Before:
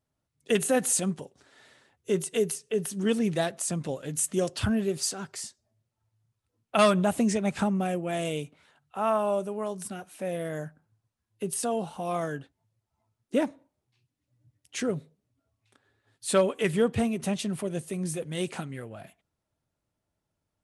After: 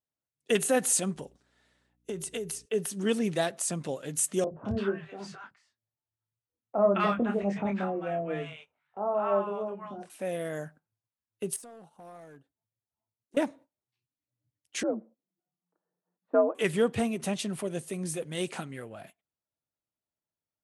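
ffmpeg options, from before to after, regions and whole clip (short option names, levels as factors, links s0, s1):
-filter_complex "[0:a]asettb=1/sr,asplit=3[s0][s1][s2];[s0]atrim=end=1.154[s3];[s1]atrim=start=1.15:end=2.66,asetpts=PTS-STARTPTS,afade=t=in:d=0.004:c=qsin,afade=t=out:st=1.506:d=0.004:c=qsin,equalizer=f=140:w=0.57:g=4.5,acompressor=threshold=0.0316:ratio=6:attack=3.2:release=140:knee=1:detection=peak,aeval=exprs='val(0)+0.00178*(sin(2*PI*60*n/s)+sin(2*PI*2*60*n/s)/2+sin(2*PI*3*60*n/s)/3+sin(2*PI*4*60*n/s)/4+sin(2*PI*5*60*n/s)/5)':c=same[s4];[s2]atrim=start=2.656[s5];[s3][s4]acrossfade=d=0.004:c1=hsin:c2=qsin[s6];[s6][s5]acrossfade=d=0.004:c1=qsin:c2=hsin,asettb=1/sr,asplit=3[s7][s8][s9];[s7]atrim=end=4.444[s10];[s8]atrim=start=4.44:end=10.1,asetpts=PTS-STARTPTS,afade=t=in:d=0.004:c=qsin,afade=t=out:st=5.656:d=0.004:c=qsin,lowpass=1800,asplit=2[s11][s12];[s12]adelay=25,volume=0.531[s13];[s11][s13]amix=inputs=2:normalize=0,atrim=end_sample=249606,acrossover=split=180|930[s14][s15][s16];[s14]adelay=70[s17];[s16]adelay=210[s18];[s17][s15][s18]amix=inputs=3:normalize=0,atrim=end_sample=249606[s19];[s9]atrim=start=10.096[s20];[s10][s19]acrossfade=d=0.004:c1=hsin:c2=qsin[s21];[s21][s20]acrossfade=d=0.004:c1=qsin:c2=hsin,asettb=1/sr,asplit=3[s22][s23][s24];[s22]atrim=end=11.564[s25];[s23]atrim=start=11.56:end=13.37,asetpts=PTS-STARTPTS,afade=t=in:d=0.004:c=qsin,afade=t=out:st=1.806:d=0.004:c=qsin,equalizer=f=2800:w=0.55:g=-8,acompressor=threshold=0.00316:ratio=2.5:attack=3.2:release=140:knee=1:detection=peak,aeval=exprs='clip(val(0),-1,0.00708)':c=same[s26];[s24]atrim=start=13.366[s27];[s25][s26]acrossfade=d=0.004:c1=hsin:c2=qsin[s28];[s28][s27]acrossfade=d=0.004:c1=qsin:c2=hsin,asettb=1/sr,asplit=3[s29][s30][s31];[s29]atrim=end=14.834[s32];[s30]atrim=start=14.83:end=16.55,asetpts=PTS-STARTPTS,afade=t=in:d=0.004:c=qsin,afade=t=out:st=1.716:d=0.004:c=qsin,lowpass=f=1100:w=0.5412,lowpass=f=1100:w=1.3066,afreqshift=69[s33];[s31]atrim=start=16.546[s34];[s32][s33]acrossfade=d=0.004:c1=hsin:c2=qsin[s35];[s35][s34]acrossfade=d=0.004:c1=qsin:c2=hsin,agate=range=0.224:threshold=0.00355:ratio=16:detection=peak,lowshelf=f=140:g=-9.5"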